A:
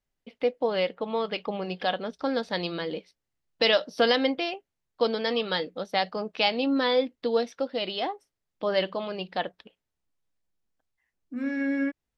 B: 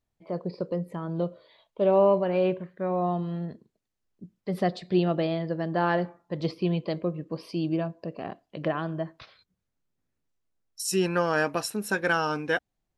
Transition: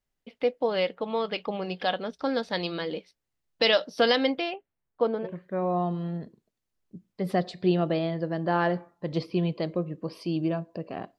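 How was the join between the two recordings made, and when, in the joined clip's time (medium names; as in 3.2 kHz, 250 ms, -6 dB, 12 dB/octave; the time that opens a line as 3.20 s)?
A
4.41–5.28 s: low-pass 3.9 kHz -> 1 kHz
5.25 s: go over to B from 2.53 s, crossfade 0.06 s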